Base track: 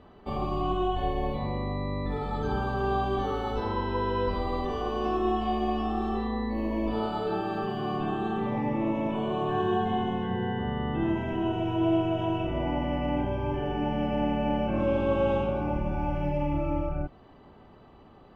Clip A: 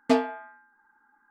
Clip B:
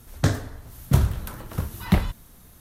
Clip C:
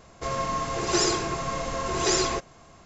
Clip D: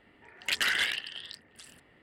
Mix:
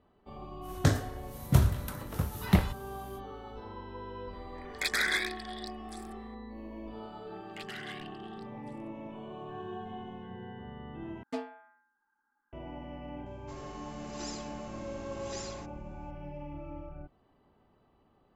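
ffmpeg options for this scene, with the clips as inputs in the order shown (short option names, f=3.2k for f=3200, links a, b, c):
-filter_complex "[4:a]asplit=2[a][b];[0:a]volume=-14.5dB[c];[2:a]highpass=50[d];[a]asuperstop=centerf=2900:order=12:qfactor=3.8[e];[b]highshelf=f=4.4k:g=-6.5[f];[3:a]equalizer=f=480:t=o:w=2.2:g=-5.5[g];[c]asplit=2[h][i];[h]atrim=end=11.234[j];[1:a]atrim=end=1.3,asetpts=PTS-STARTPTS,volume=-15dB[k];[i]atrim=start=12.526[l];[d]atrim=end=2.6,asetpts=PTS-STARTPTS,volume=-3.5dB,afade=t=in:d=0.05,afade=t=out:st=2.55:d=0.05,adelay=610[m];[e]atrim=end=2.02,asetpts=PTS-STARTPTS,volume=-0.5dB,afade=t=in:d=0.004:c=hsin,afade=t=out:st=2.016:d=0.004:c=hsin,adelay=190953S[n];[f]atrim=end=2.02,asetpts=PTS-STARTPTS,volume=-15dB,afade=t=in:d=0.004:c=hsin,afade=t=out:st=2.016:d=0.004:c=hsin,adelay=7080[o];[g]atrim=end=2.85,asetpts=PTS-STARTPTS,volume=-18dB,afade=t=in:d=0.004:c=hsin,afade=t=out:st=2.846:d=0.004:c=hsin,adelay=13260[p];[j][k]acrossfade=d=0.004:c1=hsin:c2=hsin[q];[q][l]acrossfade=d=0.004:c1=hsin:c2=hsin[r];[r][m][n][o][p]amix=inputs=5:normalize=0"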